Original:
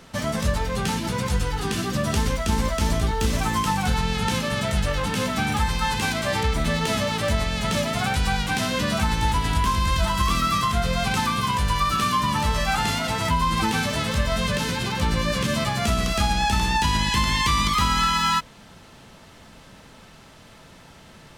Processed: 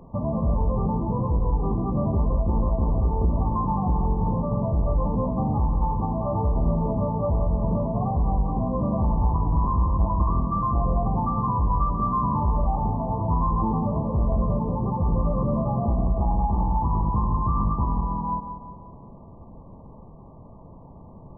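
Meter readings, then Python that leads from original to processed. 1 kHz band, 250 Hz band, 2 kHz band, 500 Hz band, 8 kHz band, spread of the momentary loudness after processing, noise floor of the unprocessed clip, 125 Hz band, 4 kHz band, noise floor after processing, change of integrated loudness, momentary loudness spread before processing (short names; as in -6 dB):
-3.0 dB, +0.5 dB, under -40 dB, -1.0 dB, under -40 dB, 2 LU, -48 dBFS, +2.0 dB, under -40 dB, -45 dBFS, -1.5 dB, 4 LU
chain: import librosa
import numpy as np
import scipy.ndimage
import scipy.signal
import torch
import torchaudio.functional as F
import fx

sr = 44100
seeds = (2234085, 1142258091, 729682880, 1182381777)

y = fx.low_shelf(x, sr, hz=190.0, db=7.0)
y = 10.0 ** (-17.5 / 20.0) * np.tanh(y / 10.0 ** (-17.5 / 20.0))
y = fx.brickwall_lowpass(y, sr, high_hz=1200.0)
y = fx.echo_feedback(y, sr, ms=180, feedback_pct=46, wet_db=-9)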